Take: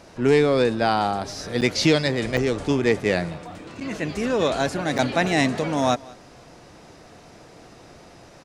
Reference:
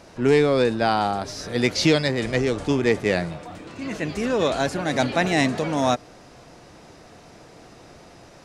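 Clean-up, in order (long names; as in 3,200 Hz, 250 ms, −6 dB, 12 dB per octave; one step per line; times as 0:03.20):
repair the gap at 0:01.61/0:02.37/0:03.80/0:04.98, 7.1 ms
echo removal 189 ms −23 dB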